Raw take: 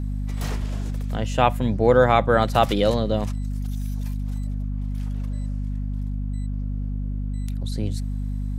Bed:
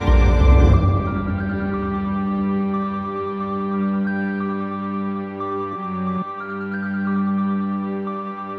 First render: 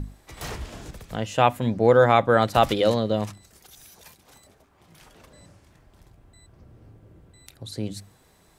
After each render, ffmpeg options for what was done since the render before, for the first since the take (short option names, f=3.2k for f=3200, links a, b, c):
-af "bandreject=f=50:t=h:w=6,bandreject=f=100:t=h:w=6,bandreject=f=150:t=h:w=6,bandreject=f=200:t=h:w=6,bandreject=f=250:t=h:w=6,bandreject=f=300:t=h:w=6"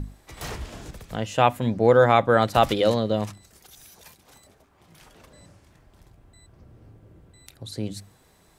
-af anull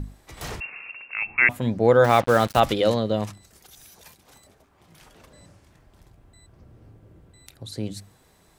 -filter_complex "[0:a]asettb=1/sr,asplit=3[a][b][c];[a]atrim=end=0.604[d];[b]atrim=start=0.6:end=1.49,asetpts=PTS-STARTPTS,afade=t=in:d=0.004:c=qsin,afade=t=out:st=0.886:d=0.004:c=qsin,lowpass=f=2.4k:t=q:w=0.5098,lowpass=f=2.4k:t=q:w=0.6013,lowpass=f=2.4k:t=q:w=0.9,lowpass=f=2.4k:t=q:w=2.563,afreqshift=-2800[e];[c]atrim=start=1.486[f];[d][e]acrossfade=d=0.004:c1=hsin:c2=qsin[g];[g][f]acrossfade=d=0.004:c1=qsin:c2=hsin,asettb=1/sr,asplit=3[h][i][j];[h]atrim=end=2.044[k];[i]atrim=start=2.04:end=2.6,asetpts=PTS-STARTPTS,afade=t=in:d=0.004:c=qsin,afade=t=out:st=0.556:d=0.004:c=qsin,acrusher=bits=4:mix=0:aa=0.5[l];[j]atrim=start=2.596[m];[k][l]acrossfade=d=0.004:c1=hsin:c2=qsin[n];[n][m]acrossfade=d=0.004:c1=qsin:c2=hsin"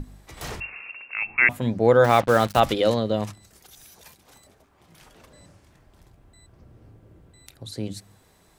-af "bandreject=f=50:t=h:w=6,bandreject=f=100:t=h:w=6,bandreject=f=150:t=h:w=6,bandreject=f=200:t=h:w=6"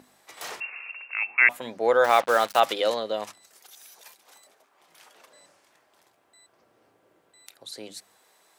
-af "highpass=560"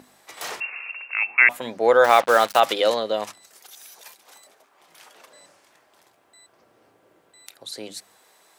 -af "volume=4.5dB,alimiter=limit=-3dB:level=0:latency=1"